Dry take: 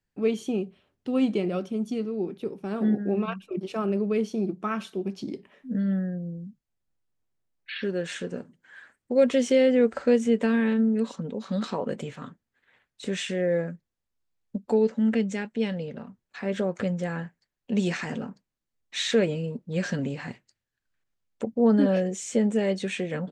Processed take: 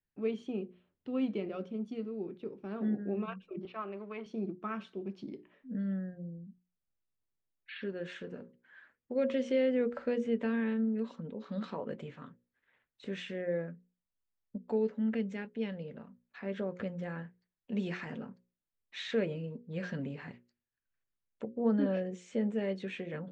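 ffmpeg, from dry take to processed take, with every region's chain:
-filter_complex "[0:a]asettb=1/sr,asplit=3[a][b][c];[a]atrim=end=3.654[d];[b]atrim=start=3.65:end=4.26,asetpts=PTS-STARTPTS,afade=t=in:d=0.004:c=qsin,afade=t=out:st=0.606:d=0.004:c=qsin,aeval=exprs='if(lt(val(0),0),0.708*val(0),val(0))':c=same,highpass=360,equalizer=f=480:t=q:w=4:g=-9,equalizer=f=1.1k:t=q:w=4:g=7,equalizer=f=2.2k:t=q:w=4:g=4,lowpass=f=4.4k:w=0.5412,lowpass=f=4.4k:w=1.3066[e];[c]atrim=start=4.256[f];[d][e]acrossfade=d=0.004:c1=hsin:c2=qsin[g];[g][f]acrossfade=d=0.004:c1=qsin:c2=hsin,lowpass=3.2k,equalizer=f=770:t=o:w=0.24:g=-3.5,bandreject=f=60:t=h:w=6,bandreject=f=120:t=h:w=6,bandreject=f=180:t=h:w=6,bandreject=f=240:t=h:w=6,bandreject=f=300:t=h:w=6,bandreject=f=360:t=h:w=6,bandreject=f=420:t=h:w=6,bandreject=f=480:t=h:w=6,bandreject=f=540:t=h:w=6,volume=-8.5dB"

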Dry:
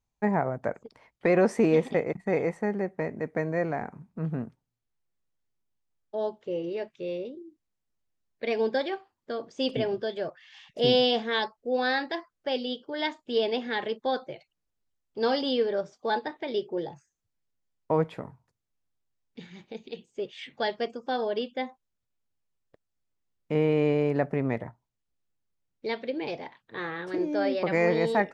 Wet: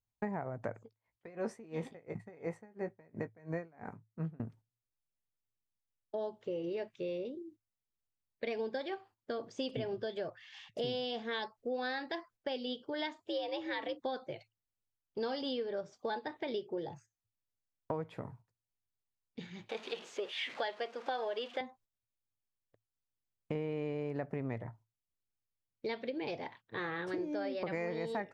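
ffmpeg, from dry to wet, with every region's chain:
-filter_complex "[0:a]asettb=1/sr,asplit=3[a][b][c];[a]atrim=end=0.804[d];[b]atrim=start=0.8:end=4.4,asetpts=PTS-STARTPTS,afade=t=in:d=0.004:c=qsin,afade=t=out:st=3.596:d=0.004:c=qsin,asplit=2[e][f];[f]adelay=18,volume=-9dB[g];[e][g]amix=inputs=2:normalize=0,atrim=end_sample=158760,aeval=exprs='val(0)*pow(10,-31*(0.5-0.5*cos(2*PI*2.9*n/s))/20)':c=same[h];[c]atrim=start=4.396[i];[d][h]acrossfade=d=0.004:c1=hsin:c2=qsin[j];[j][i]acrossfade=d=0.004:c1=qsin:c2=hsin,asettb=1/sr,asplit=3[k][l][m];[k]atrim=end=13.204[n];[l]atrim=start=13.2:end=14.02,asetpts=PTS-STARTPTS,afade=t=in:d=0.004:c=qsin,afade=t=out:st=0.816:d=0.004:c=qsin,asubboost=boost=7.5:cutoff=210,afreqshift=82[o];[m]atrim=start=14.016[p];[n][o]acrossfade=d=0.004:c1=hsin:c2=qsin[q];[q][p]acrossfade=d=0.004:c1=qsin:c2=hsin,asettb=1/sr,asplit=3[r][s][t];[r]atrim=end=19.694[u];[s]atrim=start=19.69:end=21.61,asetpts=PTS-STARTPTS,afade=t=in:d=0.004:c=qsin,afade=t=out:st=1.916:d=0.004:c=qsin,aeval=exprs='val(0)+0.5*0.00562*sgn(val(0))':c=same,acontrast=61,highpass=550,lowpass=4.2k[v];[t]atrim=start=21.606[w];[u][v]acrossfade=d=0.004:c1=hsin:c2=qsin[x];[x][w]acrossfade=d=0.004:c1=qsin:c2=hsin,agate=range=-10dB:threshold=-54dB:ratio=16:detection=peak,equalizer=f=110:t=o:w=0.21:g=11.5,acompressor=threshold=-33dB:ratio=6,volume=-1.5dB"

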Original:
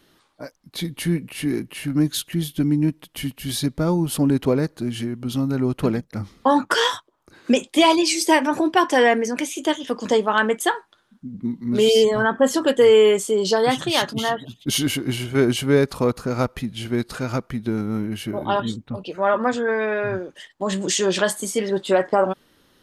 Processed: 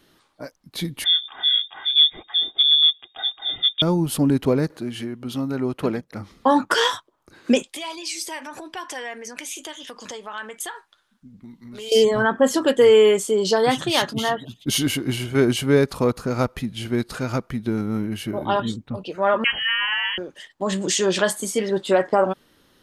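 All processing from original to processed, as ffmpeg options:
-filter_complex "[0:a]asettb=1/sr,asplit=3[a][b][c];[a]atrim=end=1.044[d];[b]atrim=start=1.04:end=3.82,asetpts=PTS-STARTPTS,afade=t=in:d=0.004:c=qsin,afade=t=out:st=2.776:d=0.004:c=qsin,tiltshelf=f=740:g=4.5,aecho=1:1:2.4:0.57,atrim=end_sample=122598,lowpass=f=3.1k:t=q:w=0.5098,lowpass=f=3.1k:t=q:w=0.6013,lowpass=f=3.1k:t=q:w=0.9,lowpass=f=3.1k:t=q:w=2.563,afreqshift=-3700[e];[c]atrim=start=3.816[f];[d][e]acrossfade=d=0.004:c1=hsin:c2=qsin[g];[g][f]acrossfade=d=0.004:c1=qsin:c2=hsin,asettb=1/sr,asplit=3[h][i][j];[h]atrim=end=4.704[k];[i]atrim=start=4.7:end=6.32,asetpts=PTS-STARTPTS,afade=t=in:d=0.004:c=qsin,afade=t=out:st=1.616:d=0.004:c=qsin,highpass=45,bass=f=250:g=-7,treble=f=4k:g=-4,acompressor=mode=upward:threshold=-38dB:ratio=2.5:attack=3.2:release=140:knee=2.83:detection=peak[l];[j]atrim=start=6.316[m];[k][l]acrossfade=d=0.004:c1=hsin:c2=qsin[n];[n][m]acrossfade=d=0.004:c1=qsin:c2=hsin,asettb=1/sr,asplit=3[o][p][q];[o]atrim=end=7.624[r];[p]atrim=start=7.62:end=11.92,asetpts=PTS-STARTPTS,afade=t=in:d=0.004:c=qsin,afade=t=out:st=4.296:d=0.004:c=qsin,acompressor=threshold=-25dB:ratio=4:attack=3.2:release=140:knee=1:detection=peak,equalizer=f=220:w=0.35:g=-12.5[s];[q]atrim=start=11.916[t];[r][s]acrossfade=d=0.004:c1=hsin:c2=qsin[u];[u][t]acrossfade=d=0.004:c1=qsin:c2=hsin,asettb=1/sr,asplit=3[v][w][x];[v]atrim=end=19.444[y];[w]atrim=start=19.44:end=20.18,asetpts=PTS-STARTPTS,afade=t=in:d=0.004:c=qsin,afade=t=out:st=0.736:d=0.004:c=qsin,tiltshelf=f=820:g=-7,lowpass=f=2.9k:t=q:w=0.5098,lowpass=f=2.9k:t=q:w=0.6013,lowpass=f=2.9k:t=q:w=0.9,lowpass=f=2.9k:t=q:w=2.563,afreqshift=-3400[z];[x]atrim=start=20.176[aa];[y][z]acrossfade=d=0.004:c1=hsin:c2=qsin[ab];[ab][aa]acrossfade=d=0.004:c1=qsin:c2=hsin"

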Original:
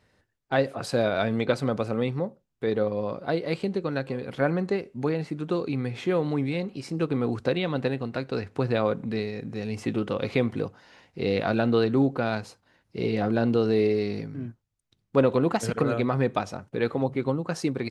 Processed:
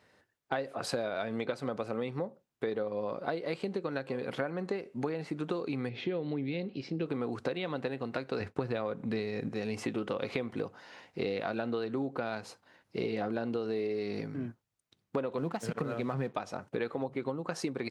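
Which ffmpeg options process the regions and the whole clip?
-filter_complex "[0:a]asettb=1/sr,asplit=3[a][b][c];[a]atrim=end=5.894[d];[b]atrim=start=5.89:end=7.06,asetpts=PTS-STARTPTS,afade=t=in:d=0.004:c=qsin,afade=t=out:st=1.166:d=0.004:c=qsin,lowpass=f=4.3k:w=0.5412,lowpass=f=4.3k:w=1.3066,equalizer=f=1.1k:t=o:w=1.5:g=-13[e];[c]atrim=start=7.056[f];[d][e]acrossfade=d=0.004:c1=hsin:c2=qsin[g];[g][f]acrossfade=d=0.004:c1=qsin:c2=hsin,asettb=1/sr,asplit=3[h][i][j];[h]atrim=end=8.404[k];[i]atrim=start=8.4:end=9.49,asetpts=PTS-STARTPTS,afade=t=in:d=0.004:c=qsin,afade=t=out:st=1.086:d=0.004:c=qsin,lowshelf=f=120:g=7.5,acontrast=24,agate=range=-33dB:threshold=-34dB:ratio=3:release=100:detection=peak[l];[j]atrim=start=9.486[m];[k][l]acrossfade=d=0.004:c1=hsin:c2=qsin[n];[n][m]acrossfade=d=0.004:c1=qsin:c2=hsin,asettb=1/sr,asplit=3[o][p][q];[o]atrim=end=15.384[r];[p]atrim=start=15.38:end=16.34,asetpts=PTS-STARTPTS,afade=t=in:d=0.004:c=qsin,afade=t=out:st=0.956:d=0.004:c=qsin,equalizer=f=160:w=1.8:g=10.5,aeval=exprs='sgn(val(0))*max(abs(val(0))-0.00668,0)':c=same[s];[q]atrim=start=16.336[t];[r][s]acrossfade=d=0.004:c1=hsin:c2=qsin[u];[u][t]acrossfade=d=0.004:c1=qsin:c2=hsin,highpass=f=200:p=1,equalizer=f=900:w=0.36:g=3,acompressor=threshold=-30dB:ratio=10"

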